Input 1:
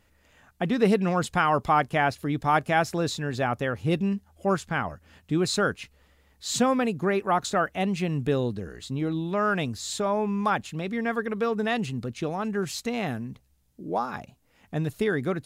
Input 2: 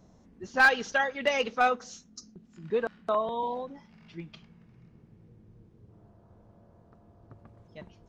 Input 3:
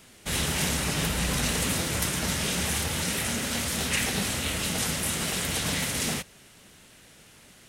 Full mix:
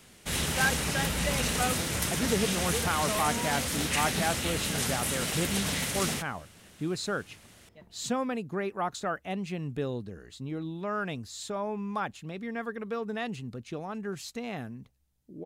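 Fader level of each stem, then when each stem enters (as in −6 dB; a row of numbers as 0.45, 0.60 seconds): −7.5, −7.5, −2.5 decibels; 1.50, 0.00, 0.00 seconds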